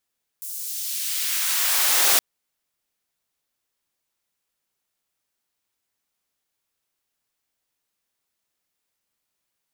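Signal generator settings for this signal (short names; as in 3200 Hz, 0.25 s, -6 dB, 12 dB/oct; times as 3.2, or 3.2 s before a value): swept filtered noise white, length 1.77 s highpass, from 9000 Hz, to 400 Hz, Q 0.87, exponential, gain ramp +15.5 dB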